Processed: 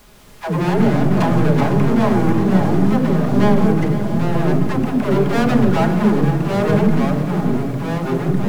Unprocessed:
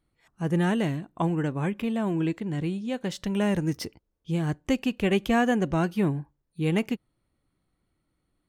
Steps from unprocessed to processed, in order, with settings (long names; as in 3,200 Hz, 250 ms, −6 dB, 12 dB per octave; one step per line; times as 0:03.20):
low-pass that shuts in the quiet parts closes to 410 Hz, open at −19 dBFS
low-pass filter 1,600 Hz 12 dB per octave
treble cut that deepens with the level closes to 1,000 Hz, closed at −25 dBFS
spectral tilt +3 dB per octave
leveller curve on the samples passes 5
in parallel at +1 dB: brickwall limiter −23.5 dBFS, peak gain reduction 6.5 dB
on the sum: all-pass dispersion lows, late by 122 ms, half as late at 350 Hz
background noise pink −46 dBFS
echo machine with several playback heads 169 ms, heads first and third, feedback 68%, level −14.5 dB
delay with pitch and tempo change per echo 151 ms, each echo −3 semitones, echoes 2
on a send at −5.5 dB: convolution reverb RT60 0.90 s, pre-delay 5 ms
on the sum: level −2.5 dB